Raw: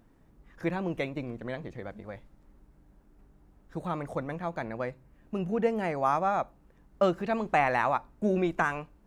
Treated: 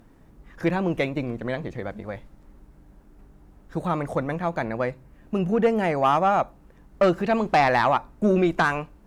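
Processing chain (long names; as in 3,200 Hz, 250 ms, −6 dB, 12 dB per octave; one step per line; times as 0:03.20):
sine wavefolder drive 4 dB, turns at −12 dBFS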